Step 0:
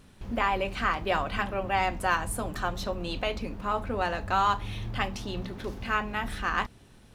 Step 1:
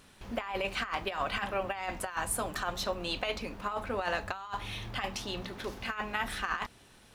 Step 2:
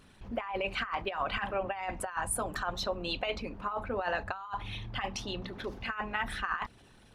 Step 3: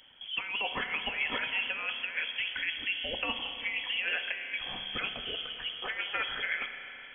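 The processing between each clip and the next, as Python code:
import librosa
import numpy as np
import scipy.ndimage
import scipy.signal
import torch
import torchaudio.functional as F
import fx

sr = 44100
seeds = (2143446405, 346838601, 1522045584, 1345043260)

y1 = fx.low_shelf(x, sr, hz=400.0, db=-11.5)
y1 = fx.over_compress(y1, sr, threshold_db=-32.0, ratio=-0.5)
y2 = fx.envelope_sharpen(y1, sr, power=1.5)
y3 = fx.freq_invert(y2, sr, carrier_hz=3300)
y3 = fx.rev_spring(y3, sr, rt60_s=3.6, pass_ms=(30, 55), chirp_ms=50, drr_db=7.0)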